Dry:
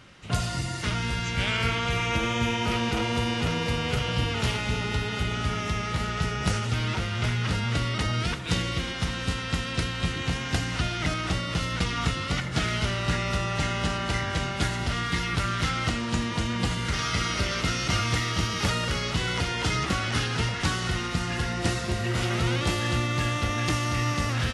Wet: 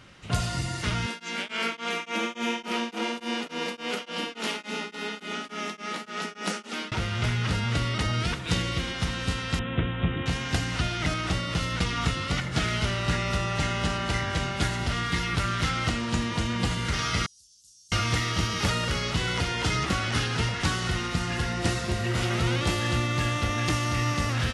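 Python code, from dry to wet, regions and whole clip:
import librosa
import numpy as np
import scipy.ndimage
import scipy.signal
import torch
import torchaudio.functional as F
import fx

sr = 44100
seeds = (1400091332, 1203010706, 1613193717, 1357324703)

y = fx.chain(x, sr, fx.steep_highpass(hz=190.0, slope=72),
    fx.tremolo_abs(hz=3.5), at=(1.06, 6.92))
y = fx.chain(y, sr, fx.highpass(hz=220.0, slope=6),
    fx.tilt_eq(slope=-3.0),
    fx.resample_bad(factor=6, down='none', up='filtered'), at=(9.59, 10.26))
y = fx.chain(y, sr, fx.cheby2_highpass(hz=2200.0, order=4, stop_db=60),
    fx.tilt_eq(slope=-4.0), at=(17.26, 17.92))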